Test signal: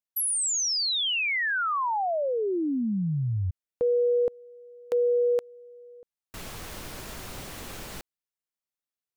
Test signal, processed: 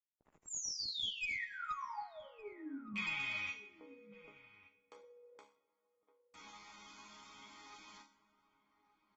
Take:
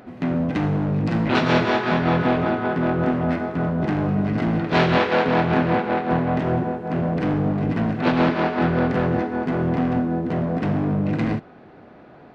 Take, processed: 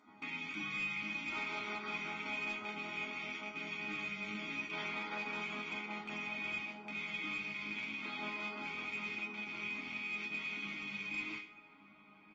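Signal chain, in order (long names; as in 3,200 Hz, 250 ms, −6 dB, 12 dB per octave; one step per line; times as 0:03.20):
loose part that buzzes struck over −27 dBFS, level −9 dBFS
high-pass filter 720 Hz 6 dB per octave
high-shelf EQ 2,900 Hz −3.5 dB
comb filter 0.9 ms, depth 81%
dynamic equaliser 940 Hz, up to −6 dB, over −38 dBFS, Q 1.4
brickwall limiter −16.5 dBFS
resonators tuned to a chord G#3 sus4, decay 0.39 s
asymmetric clip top −39.5 dBFS, bottom −35 dBFS
slap from a distant wall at 200 metres, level −15 dB
dense smooth reverb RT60 3.1 s, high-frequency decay 0.6×, DRR 17.5 dB
level +4.5 dB
AAC 24 kbit/s 48,000 Hz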